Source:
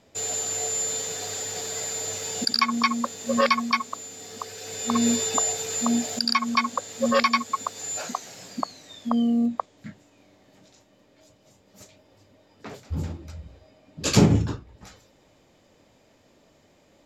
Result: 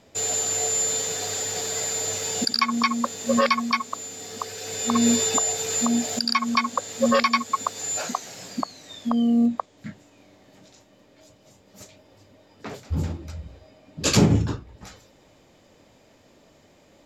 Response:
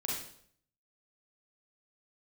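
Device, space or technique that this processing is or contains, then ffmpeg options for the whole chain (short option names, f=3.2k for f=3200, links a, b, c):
clipper into limiter: -af "asoftclip=type=hard:threshold=-8dB,alimiter=limit=-12dB:level=0:latency=1:release=302,volume=3.5dB"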